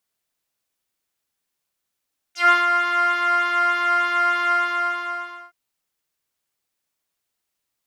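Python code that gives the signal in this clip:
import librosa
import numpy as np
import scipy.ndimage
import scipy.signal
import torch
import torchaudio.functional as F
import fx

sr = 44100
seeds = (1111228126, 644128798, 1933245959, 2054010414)

y = fx.sub_patch_pwm(sr, seeds[0], note=77, wave2='saw', interval_st=7, detune_cents=16, level2_db=-9.0, sub_db=-6.0, noise_db=-27.5, kind='bandpass', cutoff_hz=1200.0, q=3.0, env_oct=2.5, env_decay_s=0.09, env_sustain_pct=10, attack_ms=140.0, decay_s=0.17, sustain_db=-7.0, release_s=1.01, note_s=2.16, lfo_hz=3.3, width_pct=15, width_swing_pct=7)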